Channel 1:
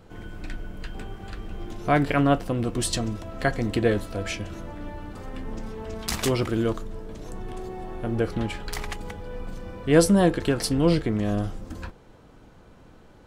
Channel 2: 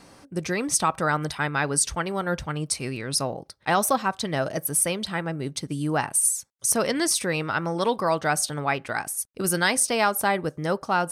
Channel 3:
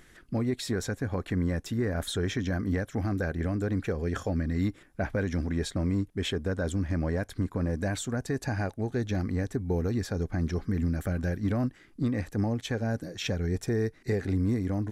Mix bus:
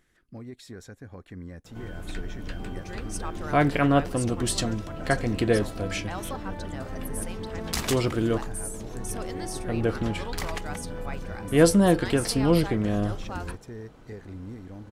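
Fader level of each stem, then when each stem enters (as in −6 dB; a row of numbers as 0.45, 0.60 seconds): −0.5, −15.0, −12.5 decibels; 1.65, 2.40, 0.00 seconds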